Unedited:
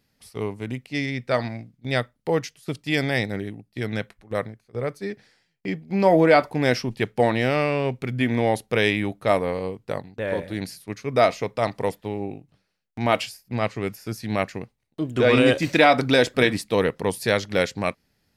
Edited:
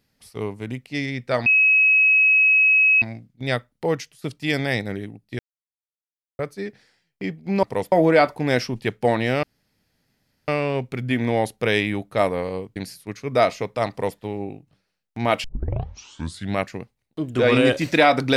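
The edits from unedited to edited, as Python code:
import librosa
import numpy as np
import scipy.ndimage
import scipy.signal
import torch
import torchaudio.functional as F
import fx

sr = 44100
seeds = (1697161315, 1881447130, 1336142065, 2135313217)

y = fx.edit(x, sr, fx.insert_tone(at_s=1.46, length_s=1.56, hz=2560.0, db=-12.5),
    fx.silence(start_s=3.83, length_s=1.0),
    fx.insert_room_tone(at_s=7.58, length_s=1.05),
    fx.cut(start_s=9.86, length_s=0.71),
    fx.duplicate(start_s=11.71, length_s=0.29, to_s=6.07),
    fx.tape_start(start_s=13.25, length_s=1.13), tone=tone)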